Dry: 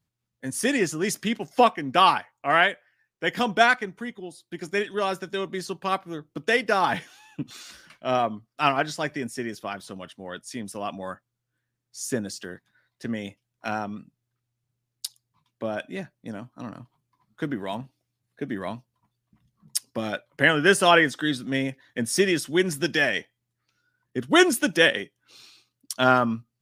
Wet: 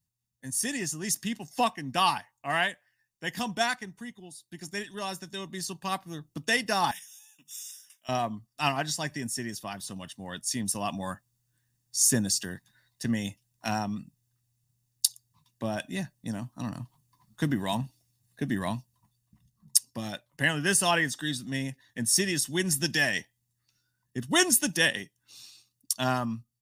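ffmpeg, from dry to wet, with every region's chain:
-filter_complex "[0:a]asettb=1/sr,asplit=3[s0][s1][s2];[s0]atrim=end=6.914[s3];[s1]atrim=start=6.91:end=8.09,asetpts=PTS-STARTPTS,afade=t=in:d=0.004:c=qsin,afade=t=out:st=1.176:d=0.004:c=qsin,asuperstop=centerf=4300:order=12:qfactor=4.1,aderivative,bandreject=f=50:t=h:w=6,bandreject=f=100:t=h:w=6,bandreject=f=150:t=h:w=6,bandreject=f=200:t=h:w=6[s4];[s2]atrim=start=8.086[s5];[s3][s4]acrossfade=d=0.004:c1=hsin:c2=qsin[s6];[s6][s5]acrossfade=d=0.004:c1=qsin:c2=hsin,aecho=1:1:1.1:0.43,dynaudnorm=f=890:g=3:m=3.76,bass=f=250:g=6,treble=f=4000:g=14,volume=0.251"

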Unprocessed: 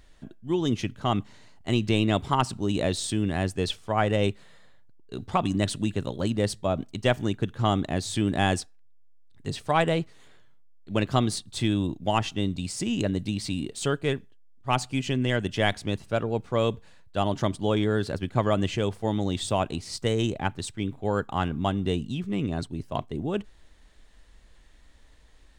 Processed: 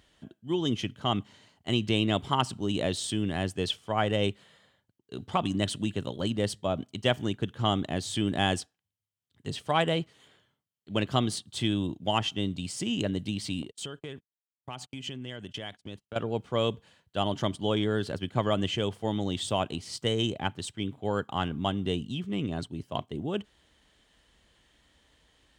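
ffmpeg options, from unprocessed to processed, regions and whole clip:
-filter_complex "[0:a]asettb=1/sr,asplit=3[s0][s1][s2];[s0]atrim=end=13.624[s3];[s1]atrim=start=13.62:end=16.16,asetpts=PTS-STARTPTS,afade=t=in:d=0.004:c=qsin,afade=t=out:st=2.536:d=0.004:c=qsin,agate=range=0.0112:threshold=0.0141:ratio=16:release=100:detection=peak,acompressor=threshold=0.0224:ratio=6:attack=3.2:release=140:knee=1:detection=peak[s4];[s2]atrim=start=16.156[s5];[s3][s4]acrossfade=d=0.004:c1=hsin:c2=qsin[s6];[s6][s5]acrossfade=d=0.004:c1=qsin:c2=hsin,highpass=84,equalizer=f=3100:w=8:g=10,volume=0.708"

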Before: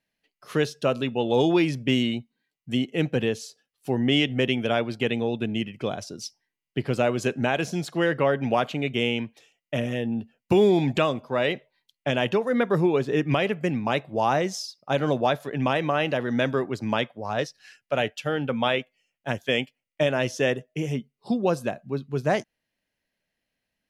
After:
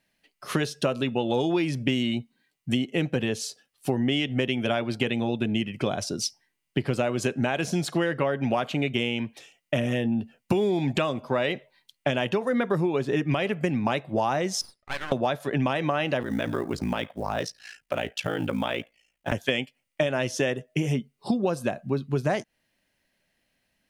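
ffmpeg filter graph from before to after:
-filter_complex "[0:a]asettb=1/sr,asplit=3[s0][s1][s2];[s0]atrim=end=14.614[s3];[s1]atrim=start=14.61:end=15.12,asetpts=PTS-STARTPTS,afade=t=in:d=0.004:c=qsin,afade=t=out:st=0.506:d=0.004:c=qsin,bandpass=f=1800:t=q:w=2.5,aeval=exprs='max(val(0),0)':c=same[s4];[s2]atrim=start=15.116[s5];[s3][s4]acrossfade=d=0.004:c1=hsin:c2=qsin[s6];[s6][s5]acrossfade=d=0.004:c1=qsin:c2=hsin,asettb=1/sr,asplit=3[s7][s8][s9];[s7]atrim=end=16.224[s10];[s8]atrim=start=16.22:end=19.32,asetpts=PTS-STARTPTS,afade=t=in:d=0.004:c=qsin,afade=t=out:st=3.096:d=0.004:c=qsin,acrusher=bits=8:mode=log:mix=0:aa=0.000001,acompressor=threshold=0.0355:ratio=3:attack=3.2:release=140:knee=1:detection=peak,aeval=exprs='val(0)*sin(2*PI*28*n/s)':c=same[s11];[s9]atrim=start=19.316[s12];[s10][s11]acrossfade=d=0.004:c1=hsin:c2=qsin[s13];[s13][s12]acrossfade=d=0.004:c1=qsin:c2=hsin,equalizer=f=8900:w=7.3:g=5.5,bandreject=f=460:w=13,acompressor=threshold=0.0316:ratio=6,volume=2.51"

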